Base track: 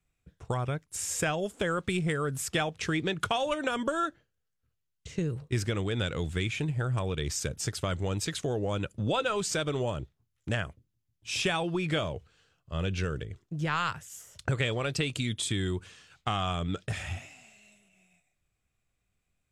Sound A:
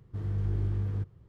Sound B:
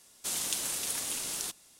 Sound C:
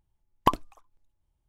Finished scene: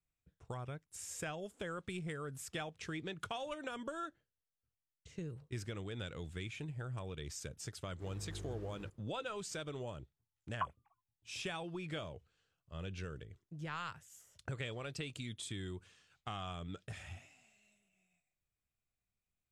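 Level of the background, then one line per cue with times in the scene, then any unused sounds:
base track -13 dB
7.86 add A -8 dB + tone controls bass -10 dB, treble +6 dB
10.14 add C -16 dB + sine-wave speech
not used: B

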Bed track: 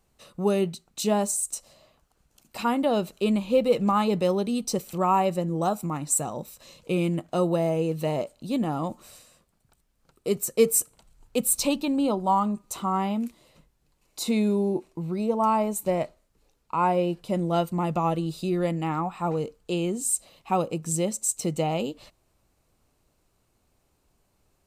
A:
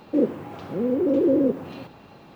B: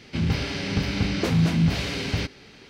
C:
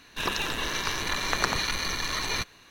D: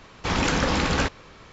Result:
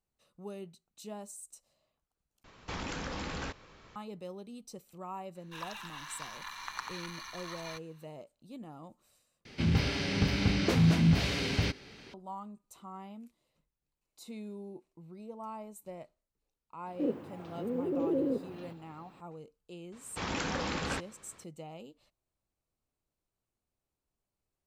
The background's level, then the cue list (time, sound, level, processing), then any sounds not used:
bed track -20 dB
2.44 replace with D -9 dB + compressor, threshold -25 dBFS
5.35 add C -16.5 dB + resonant low shelf 700 Hz -10.5 dB, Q 3
9.45 replace with B -3.5 dB
16.86 add A -11 dB
19.92 add D -11 dB + HPF 92 Hz 6 dB/oct

